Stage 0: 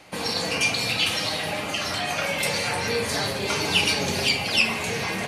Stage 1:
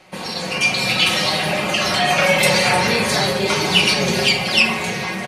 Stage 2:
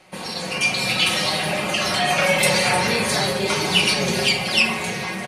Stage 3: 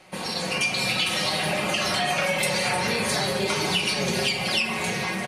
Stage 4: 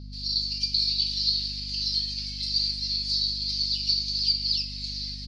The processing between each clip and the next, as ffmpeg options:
-af "highshelf=f=5.9k:g=-5,aecho=1:1:5.4:0.6,dynaudnorm=f=300:g=5:m=11dB"
-af "equalizer=f=9.6k:w=2.1:g=5,volume=-3dB"
-af "acompressor=threshold=-21dB:ratio=6"
-af "acrusher=bits=2:mode=log:mix=0:aa=0.000001,asuperpass=centerf=4600:order=4:qfactor=5.3,aeval=exprs='val(0)+0.00501*(sin(2*PI*50*n/s)+sin(2*PI*2*50*n/s)/2+sin(2*PI*3*50*n/s)/3+sin(2*PI*4*50*n/s)/4+sin(2*PI*5*50*n/s)/5)':c=same,volume=7.5dB"

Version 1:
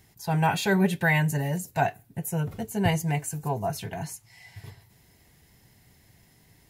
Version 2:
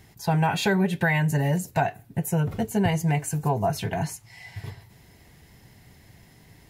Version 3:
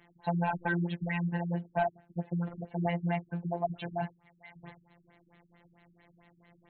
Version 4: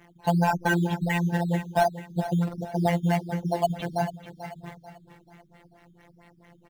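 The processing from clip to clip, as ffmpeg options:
-af "highshelf=f=5.4k:g=-7,acompressor=threshold=-26dB:ratio=6,volume=7dB"
-filter_complex "[0:a]afftfilt=real='hypot(re,im)*cos(PI*b)':imag='0':win_size=1024:overlap=0.75,asplit=2[a][b];[b]highpass=f=720:p=1,volume=17dB,asoftclip=type=tanh:threshold=-8.5dB[c];[a][c]amix=inputs=2:normalize=0,lowpass=f=1.6k:p=1,volume=-6dB,afftfilt=real='re*lt(b*sr/1024,300*pow(4400/300,0.5+0.5*sin(2*PI*4.5*pts/sr)))':imag='im*lt(b*sr/1024,300*pow(4400/300,0.5+0.5*sin(2*PI*4.5*pts/sr)))':win_size=1024:overlap=0.75,volume=-7.5dB"
-filter_complex "[0:a]asplit=2[a][b];[b]acrusher=samples=10:mix=1:aa=0.000001:lfo=1:lforange=6:lforate=1.4,volume=-6.5dB[c];[a][c]amix=inputs=2:normalize=0,aecho=1:1:439|878|1317|1756:0.251|0.098|0.0382|0.0149,volume=4.5dB"

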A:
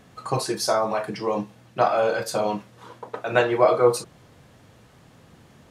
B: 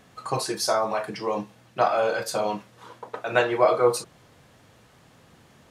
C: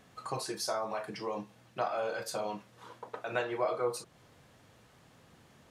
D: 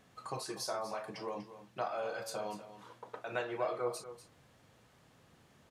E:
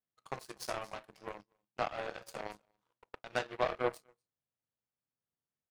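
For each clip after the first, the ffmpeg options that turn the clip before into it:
-af "lowshelf=f=450:g=-5"
-af "acompressor=threshold=-34dB:ratio=1.5,volume=-5.5dB"
-af "aecho=1:1:243:0.224,volume=-4dB"
-af "aeval=exprs='0.0891*(cos(1*acos(clip(val(0)/0.0891,-1,1)))-cos(1*PI/2))+0.0126*(cos(7*acos(clip(val(0)/0.0891,-1,1)))-cos(7*PI/2))':c=same,volume=3.5dB"

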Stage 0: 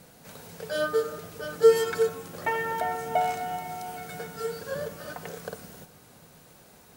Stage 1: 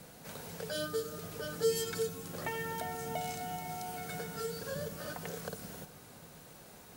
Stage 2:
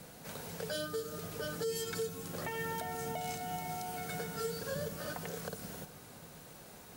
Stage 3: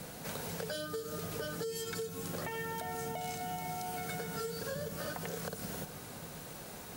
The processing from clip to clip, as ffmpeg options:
-filter_complex "[0:a]acrossover=split=290|3000[a][b][c];[b]acompressor=threshold=-41dB:ratio=4[d];[a][d][c]amix=inputs=3:normalize=0"
-af "alimiter=level_in=4.5dB:limit=-24dB:level=0:latency=1:release=178,volume=-4.5dB,volume=1dB"
-af "acompressor=threshold=-42dB:ratio=6,volume=6dB"

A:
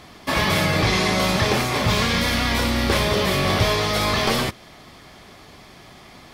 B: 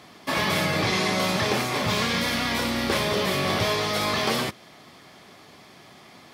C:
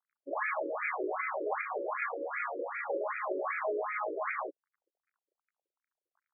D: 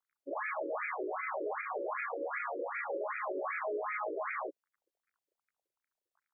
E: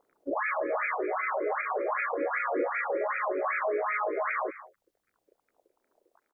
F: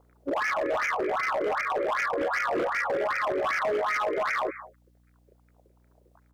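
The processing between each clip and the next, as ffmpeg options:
-af "highpass=130,volume=-3.5dB"
-af "aeval=exprs='sgn(val(0))*max(abs(val(0))-0.00944,0)':c=same,afftfilt=real='re*between(b*sr/1024,400*pow(1800/400,0.5+0.5*sin(2*PI*2.6*pts/sr))/1.41,400*pow(1800/400,0.5+0.5*sin(2*PI*2.6*pts/sr))*1.41)':imag='im*between(b*sr/1024,400*pow(1800/400,0.5+0.5*sin(2*PI*2.6*pts/sr))/1.41,400*pow(1800/400,0.5+0.5*sin(2*PI*2.6*pts/sr))*1.41)':win_size=1024:overlap=0.75,volume=-1.5dB"
-af "alimiter=level_in=4.5dB:limit=-24dB:level=0:latency=1:release=70,volume=-4.5dB"
-filter_complex "[0:a]acrossover=split=300|580[a][b][c];[a]aphaser=in_gain=1:out_gain=1:delay=1.5:decay=0.75:speed=0.4:type=sinusoidal[d];[b]acompressor=mode=upward:threshold=-54dB:ratio=2.5[e];[c]aecho=1:1:208|229:0.15|0.112[f];[d][e][f]amix=inputs=3:normalize=0,volume=7dB"
-filter_complex "[0:a]asplit=2[a][b];[b]asoftclip=type=tanh:threshold=-27.5dB,volume=-4dB[c];[a][c]amix=inputs=2:normalize=0,aeval=exprs='val(0)+0.000891*(sin(2*PI*60*n/s)+sin(2*PI*2*60*n/s)/2+sin(2*PI*3*60*n/s)/3+sin(2*PI*4*60*n/s)/4+sin(2*PI*5*60*n/s)/5)':c=same,aeval=exprs='0.0794*(abs(mod(val(0)/0.0794+3,4)-2)-1)':c=same"

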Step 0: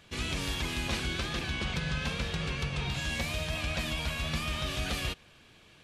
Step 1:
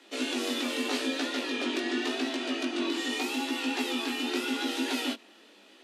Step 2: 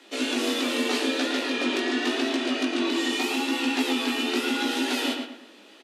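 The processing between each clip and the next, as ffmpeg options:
-af "flanger=delay=15:depth=7.2:speed=0.84,afreqshift=200,volume=4.5dB"
-filter_complex "[0:a]asplit=2[a][b];[b]adelay=111,lowpass=f=3.4k:p=1,volume=-4.5dB,asplit=2[c][d];[d]adelay=111,lowpass=f=3.4k:p=1,volume=0.36,asplit=2[e][f];[f]adelay=111,lowpass=f=3.4k:p=1,volume=0.36,asplit=2[g][h];[h]adelay=111,lowpass=f=3.4k:p=1,volume=0.36,asplit=2[i][j];[j]adelay=111,lowpass=f=3.4k:p=1,volume=0.36[k];[a][c][e][g][i][k]amix=inputs=6:normalize=0,volume=4dB"

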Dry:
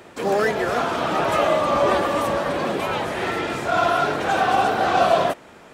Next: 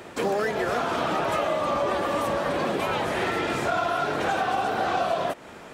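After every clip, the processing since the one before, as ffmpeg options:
-af "acompressor=threshold=-25dB:ratio=6,volume=2.5dB"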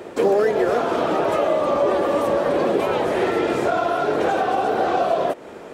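-af "equalizer=f=430:t=o:w=1.6:g=11,volume=-1dB"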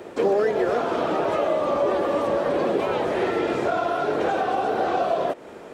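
-filter_complex "[0:a]acrossover=split=6800[a][b];[b]acompressor=threshold=-56dB:ratio=4:attack=1:release=60[c];[a][c]amix=inputs=2:normalize=0,volume=-3dB"

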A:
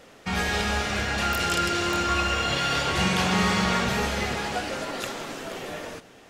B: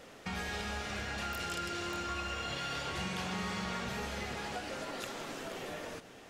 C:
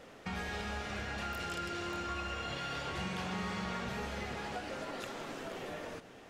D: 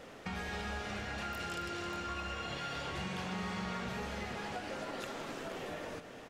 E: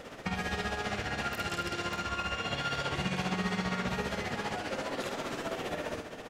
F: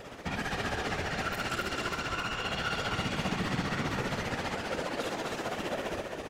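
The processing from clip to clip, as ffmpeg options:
-af "acompressor=threshold=-38dB:ratio=2.5,volume=-2.5dB"
-af "highshelf=f=3.6k:g=-6.5"
-af "acompressor=threshold=-45dB:ratio=1.5,aecho=1:1:266:0.237,volume=2.5dB"
-filter_complex "[0:a]asplit=2[a][b];[b]adelay=50,volume=-5.5dB[c];[a][c]amix=inputs=2:normalize=0,tremolo=f=15:d=0.57,volume=7.5dB"
-af "volume=28dB,asoftclip=hard,volume=-28dB,afftfilt=real='hypot(re,im)*cos(2*PI*random(0))':imag='hypot(re,im)*sin(2*PI*random(1))':win_size=512:overlap=0.75,aecho=1:1:263:0.531,volume=6.5dB"

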